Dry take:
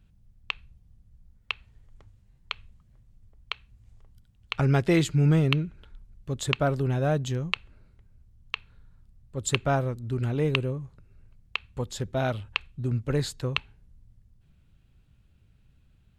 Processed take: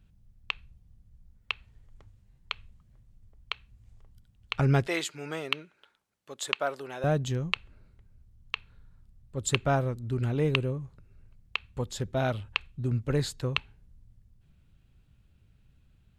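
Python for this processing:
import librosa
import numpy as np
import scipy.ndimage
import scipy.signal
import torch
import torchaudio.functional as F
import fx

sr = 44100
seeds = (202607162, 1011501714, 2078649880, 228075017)

y = fx.highpass(x, sr, hz=600.0, slope=12, at=(4.87, 7.04))
y = y * librosa.db_to_amplitude(-1.0)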